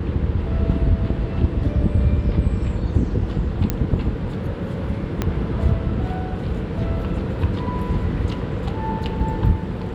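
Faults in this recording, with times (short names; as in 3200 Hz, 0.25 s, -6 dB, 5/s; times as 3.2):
3.7 pop -7 dBFS
5.22 pop -8 dBFS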